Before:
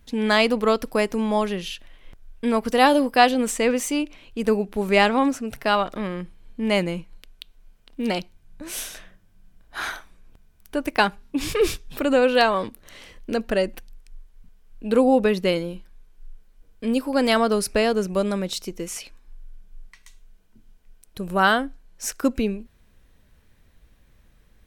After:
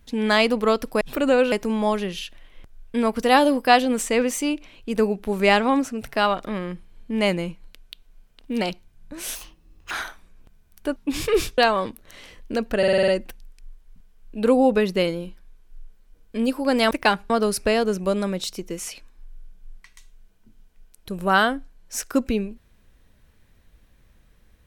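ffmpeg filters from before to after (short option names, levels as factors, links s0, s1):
-filter_complex "[0:a]asplit=15[s0][s1][s2][s3][s4][s5][s6][s7][s8][s9][s10][s11][s12][s13][s14];[s0]atrim=end=1.012[s15];[s1]atrim=start=11.848:end=12.362[s16];[s2]atrim=start=1.008:end=8.844[s17];[s3]atrim=start=8.84:end=9.79,asetpts=PTS-STARTPTS,asetrate=74970,aresample=44100,atrim=end_sample=24644,asetpts=PTS-STARTPTS[s18];[s4]atrim=start=9.786:end=10.842[s19];[s5]atrim=start=11.228:end=11.852[s20];[s6]atrim=start=12.358:end=13.612[s21];[s7]atrim=start=13.558:end=13.612[s22];[s8]atrim=start=13.558:end=13.612[s23];[s9]atrim=start=13.558:end=13.612[s24];[s10]atrim=start=13.558:end=13.612[s25];[s11]atrim=start=13.558:end=13.612[s26];[s12]atrim=start=13.558:end=17.392[s27];[s13]atrim=start=10.838:end=11.232[s28];[s14]atrim=start=17.388[s29];[s15][s16]acrossfade=d=0.004:c1=hsin:c2=hsin[s30];[s30][s17]acrossfade=d=0.004:c1=hsin:c2=hsin[s31];[s31][s18]acrossfade=d=0.004:c1=hsin:c2=hsin[s32];[s32][s19]acrossfade=d=0.004:c1=hsin:c2=hsin[s33];[s33][s20]acrossfade=d=0.004:c1=hsin:c2=hsin[s34];[s34][s21]acrossfade=d=0.004:c1=hsin:c2=hsin[s35];[s35][s22]acrossfade=d=0.004:c1=hsin:c2=hsin[s36];[s36][s23]acrossfade=d=0.004:c1=hsin:c2=hsin[s37];[s37][s24]acrossfade=d=0.004:c1=hsin:c2=hsin[s38];[s38][s25]acrossfade=d=0.004:c1=hsin:c2=hsin[s39];[s39][s26]acrossfade=d=0.004:c1=hsin:c2=hsin[s40];[s40][s27]acrossfade=d=0.004:c1=hsin:c2=hsin[s41];[s41][s28]acrossfade=d=0.004:c1=hsin:c2=hsin[s42];[s42][s29]acrossfade=d=0.004:c1=hsin:c2=hsin"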